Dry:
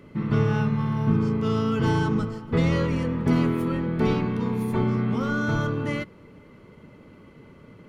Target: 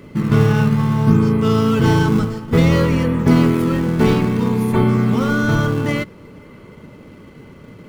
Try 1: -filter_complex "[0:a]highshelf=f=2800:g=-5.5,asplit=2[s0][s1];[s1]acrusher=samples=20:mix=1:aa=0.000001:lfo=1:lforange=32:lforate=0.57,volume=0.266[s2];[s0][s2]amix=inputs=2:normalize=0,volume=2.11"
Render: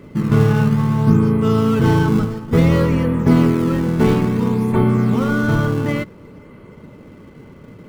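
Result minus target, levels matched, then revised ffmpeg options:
4 kHz band -4.0 dB
-filter_complex "[0:a]highshelf=f=2800:g=3.5,asplit=2[s0][s1];[s1]acrusher=samples=20:mix=1:aa=0.000001:lfo=1:lforange=32:lforate=0.57,volume=0.266[s2];[s0][s2]amix=inputs=2:normalize=0,volume=2.11"

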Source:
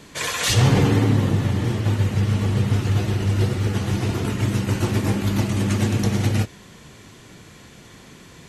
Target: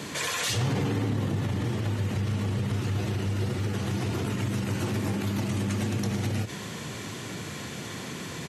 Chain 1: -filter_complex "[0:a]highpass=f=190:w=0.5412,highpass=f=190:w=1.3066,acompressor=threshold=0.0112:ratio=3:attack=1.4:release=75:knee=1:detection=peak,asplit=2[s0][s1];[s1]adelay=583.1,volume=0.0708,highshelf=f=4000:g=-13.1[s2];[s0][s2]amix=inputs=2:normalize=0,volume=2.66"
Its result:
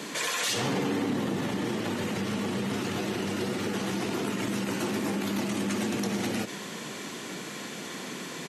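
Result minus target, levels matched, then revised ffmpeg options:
125 Hz band -9.0 dB
-filter_complex "[0:a]highpass=f=88:w=0.5412,highpass=f=88:w=1.3066,acompressor=threshold=0.0112:ratio=3:attack=1.4:release=75:knee=1:detection=peak,asplit=2[s0][s1];[s1]adelay=583.1,volume=0.0708,highshelf=f=4000:g=-13.1[s2];[s0][s2]amix=inputs=2:normalize=0,volume=2.66"

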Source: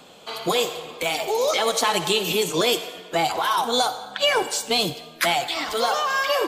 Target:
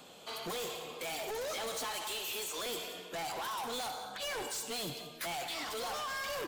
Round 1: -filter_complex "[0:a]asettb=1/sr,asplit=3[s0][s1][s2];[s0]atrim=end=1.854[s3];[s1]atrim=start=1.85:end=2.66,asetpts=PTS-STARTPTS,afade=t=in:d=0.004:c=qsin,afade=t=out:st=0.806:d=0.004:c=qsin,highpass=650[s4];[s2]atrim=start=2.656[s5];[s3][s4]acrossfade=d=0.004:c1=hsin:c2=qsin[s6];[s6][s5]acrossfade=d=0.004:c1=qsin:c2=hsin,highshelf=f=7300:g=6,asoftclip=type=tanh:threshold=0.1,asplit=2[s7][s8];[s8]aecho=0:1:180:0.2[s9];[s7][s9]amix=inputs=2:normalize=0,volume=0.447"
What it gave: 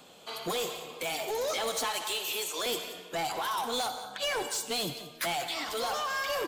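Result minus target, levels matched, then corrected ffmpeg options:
saturation: distortion -6 dB
-filter_complex "[0:a]asettb=1/sr,asplit=3[s0][s1][s2];[s0]atrim=end=1.854[s3];[s1]atrim=start=1.85:end=2.66,asetpts=PTS-STARTPTS,afade=t=in:d=0.004:c=qsin,afade=t=out:st=0.806:d=0.004:c=qsin,highpass=650[s4];[s2]atrim=start=2.656[s5];[s3][s4]acrossfade=d=0.004:c1=hsin:c2=qsin[s6];[s6][s5]acrossfade=d=0.004:c1=qsin:c2=hsin,highshelf=f=7300:g=6,asoftclip=type=tanh:threshold=0.0335,asplit=2[s7][s8];[s8]aecho=0:1:180:0.2[s9];[s7][s9]amix=inputs=2:normalize=0,volume=0.447"

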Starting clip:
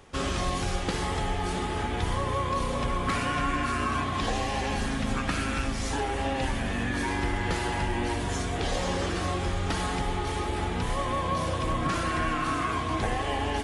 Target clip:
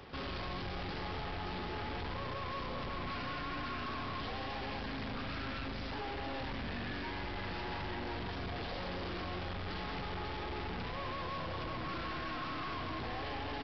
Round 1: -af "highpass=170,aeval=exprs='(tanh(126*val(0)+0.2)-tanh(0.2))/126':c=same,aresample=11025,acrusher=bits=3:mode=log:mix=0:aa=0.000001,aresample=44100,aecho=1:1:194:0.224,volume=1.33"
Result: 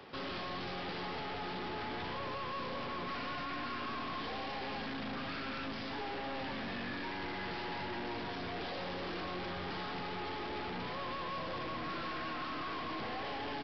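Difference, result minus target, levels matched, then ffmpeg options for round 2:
125 Hz band -5.5 dB
-af "highpass=43,aeval=exprs='(tanh(126*val(0)+0.2)-tanh(0.2))/126':c=same,aresample=11025,acrusher=bits=3:mode=log:mix=0:aa=0.000001,aresample=44100,aecho=1:1:194:0.224,volume=1.33"

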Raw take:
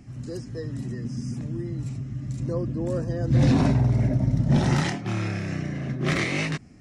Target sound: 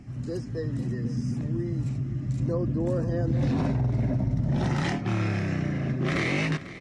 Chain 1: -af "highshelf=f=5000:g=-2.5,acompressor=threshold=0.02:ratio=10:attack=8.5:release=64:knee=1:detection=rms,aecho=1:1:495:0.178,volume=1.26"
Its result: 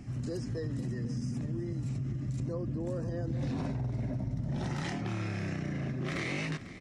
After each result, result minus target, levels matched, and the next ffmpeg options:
compression: peak gain reduction +8.5 dB; 8 kHz band +4.0 dB
-af "highshelf=f=5000:g=-2.5,acompressor=threshold=0.0596:ratio=10:attack=8.5:release=64:knee=1:detection=rms,aecho=1:1:495:0.178,volume=1.26"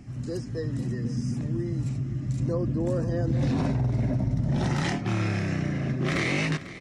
8 kHz band +4.0 dB
-af "highshelf=f=5000:g=-9,acompressor=threshold=0.0596:ratio=10:attack=8.5:release=64:knee=1:detection=rms,aecho=1:1:495:0.178,volume=1.26"

